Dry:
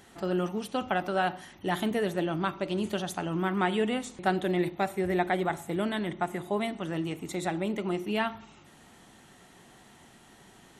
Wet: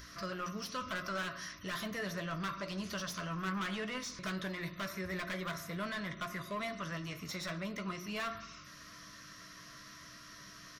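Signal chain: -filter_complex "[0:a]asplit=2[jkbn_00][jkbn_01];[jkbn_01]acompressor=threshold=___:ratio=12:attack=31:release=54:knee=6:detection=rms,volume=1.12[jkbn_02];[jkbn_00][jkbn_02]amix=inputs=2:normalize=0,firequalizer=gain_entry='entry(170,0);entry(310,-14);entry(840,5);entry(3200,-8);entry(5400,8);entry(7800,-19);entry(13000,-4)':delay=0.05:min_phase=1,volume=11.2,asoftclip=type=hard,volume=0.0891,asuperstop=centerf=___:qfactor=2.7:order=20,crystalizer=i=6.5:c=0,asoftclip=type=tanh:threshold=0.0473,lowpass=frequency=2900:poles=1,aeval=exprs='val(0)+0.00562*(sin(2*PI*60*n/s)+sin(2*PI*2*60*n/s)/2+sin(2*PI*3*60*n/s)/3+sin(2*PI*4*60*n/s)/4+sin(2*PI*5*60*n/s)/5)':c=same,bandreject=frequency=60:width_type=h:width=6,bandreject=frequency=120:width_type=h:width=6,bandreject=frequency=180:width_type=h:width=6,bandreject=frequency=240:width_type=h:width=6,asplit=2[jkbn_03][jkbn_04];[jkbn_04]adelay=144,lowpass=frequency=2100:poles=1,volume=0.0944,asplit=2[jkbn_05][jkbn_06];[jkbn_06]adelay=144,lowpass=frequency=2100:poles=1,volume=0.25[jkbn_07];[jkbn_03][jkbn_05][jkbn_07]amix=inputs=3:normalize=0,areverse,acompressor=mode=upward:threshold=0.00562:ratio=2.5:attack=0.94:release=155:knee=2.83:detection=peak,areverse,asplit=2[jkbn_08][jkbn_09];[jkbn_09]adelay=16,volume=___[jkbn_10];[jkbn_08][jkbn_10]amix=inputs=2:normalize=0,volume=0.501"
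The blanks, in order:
0.0112, 820, 0.299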